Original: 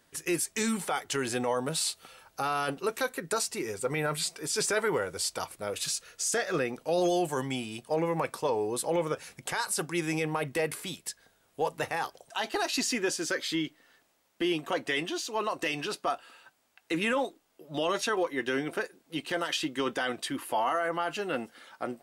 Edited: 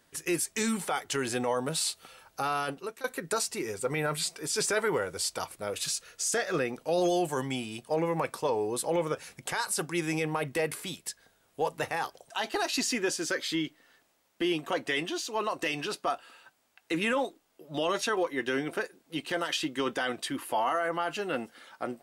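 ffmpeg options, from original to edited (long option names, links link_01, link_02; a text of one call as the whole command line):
ffmpeg -i in.wav -filter_complex "[0:a]asplit=2[link_01][link_02];[link_01]atrim=end=3.04,asetpts=PTS-STARTPTS,afade=type=out:start_time=2.55:duration=0.49:silence=0.141254[link_03];[link_02]atrim=start=3.04,asetpts=PTS-STARTPTS,afade=type=in:duration=0.004:curve=hsin:silence=0.141254[link_04];[link_03][link_04]concat=n=2:v=0:a=1" out.wav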